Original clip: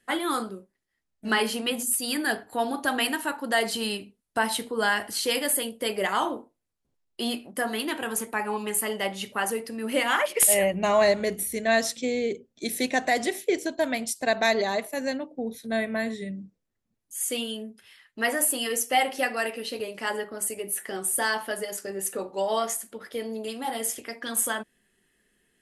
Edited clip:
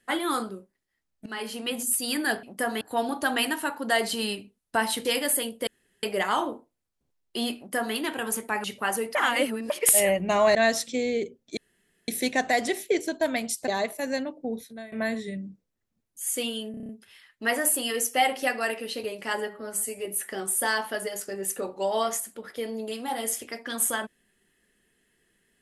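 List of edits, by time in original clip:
1.26–1.89 fade in, from -17.5 dB
4.67–5.25 cut
5.87 insert room tone 0.36 s
7.41–7.79 copy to 2.43
8.48–9.18 cut
9.69–10.24 reverse
11.09–11.64 cut
12.66 insert room tone 0.51 s
14.26–14.62 cut
15.53–15.86 fade out quadratic, to -18.5 dB
17.65 stutter 0.03 s, 7 plays
20.23–20.62 stretch 1.5×

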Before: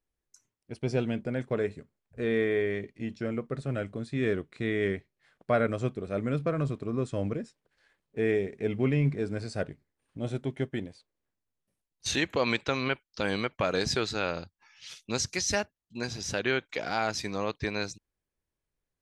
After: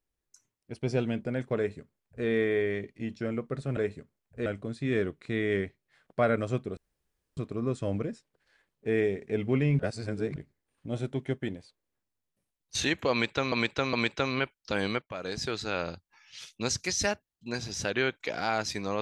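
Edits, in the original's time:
1.57–2.26 copy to 3.77
6.08–6.68 room tone
9.1–9.67 reverse
12.42–12.83 loop, 3 plays
13.51–14.38 fade in, from -14.5 dB

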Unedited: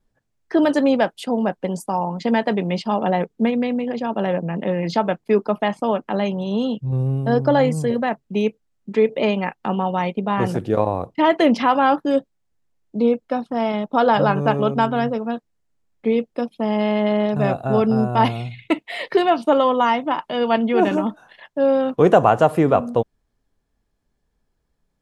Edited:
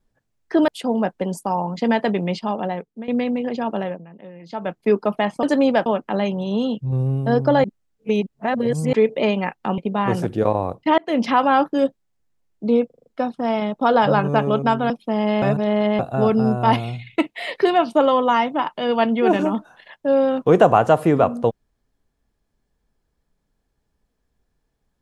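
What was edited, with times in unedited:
0.68–1.11 move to 5.86
2.65–3.51 fade out, to -18 dB
4.11–5.28 dip -18 dB, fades 0.37 s linear
7.64–8.93 reverse
9.78–10.1 cut
11.3–11.6 fade in
13.18 stutter 0.04 s, 6 plays
15.02–16.42 cut
16.94–17.51 reverse

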